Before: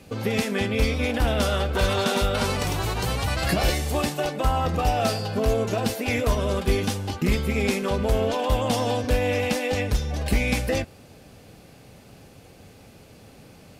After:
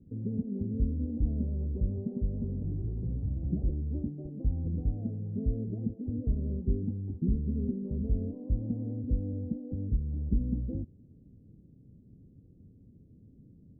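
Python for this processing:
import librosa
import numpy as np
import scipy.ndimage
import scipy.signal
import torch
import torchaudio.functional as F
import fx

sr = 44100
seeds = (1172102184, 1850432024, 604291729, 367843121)

y = scipy.signal.sosfilt(scipy.signal.cheby2(4, 80, 1800.0, 'lowpass', fs=sr, output='sos'), x)
y = F.gain(torch.from_numpy(y), -5.0).numpy()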